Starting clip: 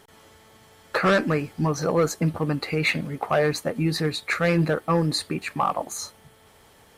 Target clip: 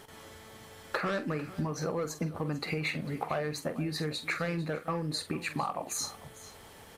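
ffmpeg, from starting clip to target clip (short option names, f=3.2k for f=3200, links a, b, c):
-filter_complex "[0:a]acompressor=threshold=-32dB:ratio=10,asplit=2[a][b];[b]adelay=46,volume=-11.5dB[c];[a][c]amix=inputs=2:normalize=0,aecho=1:1:448:0.141,volume=2dB"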